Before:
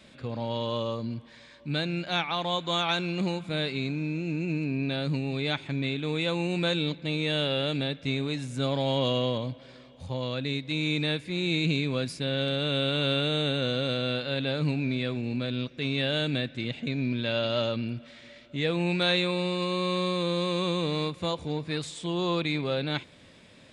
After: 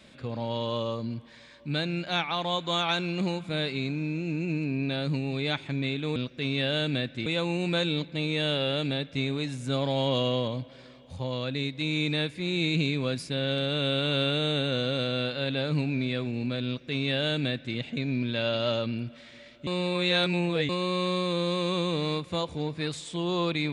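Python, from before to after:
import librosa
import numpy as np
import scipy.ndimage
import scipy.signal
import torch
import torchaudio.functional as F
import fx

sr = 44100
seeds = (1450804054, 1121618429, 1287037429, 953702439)

y = fx.edit(x, sr, fx.duplicate(start_s=15.56, length_s=1.1, to_s=6.16),
    fx.reverse_span(start_s=18.57, length_s=1.02), tone=tone)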